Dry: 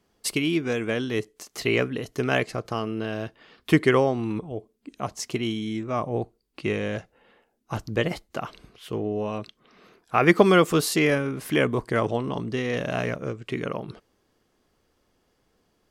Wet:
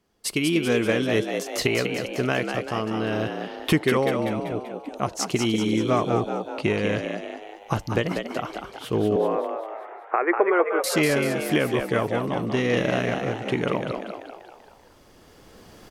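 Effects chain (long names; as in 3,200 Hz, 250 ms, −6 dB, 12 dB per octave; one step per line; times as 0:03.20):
camcorder AGC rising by 8.3 dB per second
0:09.16–0:10.84: elliptic band-pass filter 360–2,000 Hz, stop band 40 dB
echo with shifted repeats 193 ms, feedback 52%, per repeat +73 Hz, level −6 dB
level −2.5 dB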